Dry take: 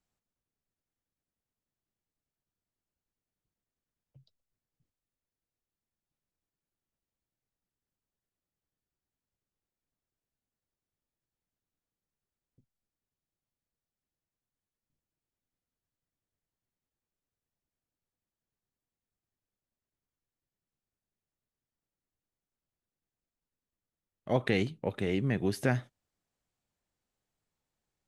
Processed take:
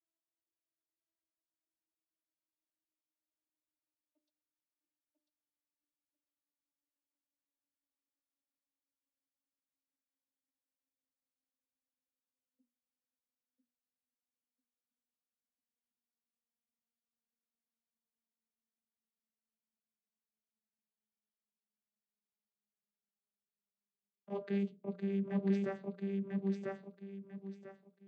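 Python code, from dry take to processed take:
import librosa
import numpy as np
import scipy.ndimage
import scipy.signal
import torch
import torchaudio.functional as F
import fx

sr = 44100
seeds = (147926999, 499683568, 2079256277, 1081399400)

p1 = fx.vocoder_glide(x, sr, note=64, semitones=-10)
p2 = p1 + fx.echo_feedback(p1, sr, ms=995, feedback_pct=24, wet_db=-4.0, dry=0)
p3 = fx.rider(p2, sr, range_db=10, speed_s=2.0)
p4 = fx.hum_notches(p3, sr, base_hz=60, count=10)
y = F.gain(torch.from_numpy(p4), -4.5).numpy()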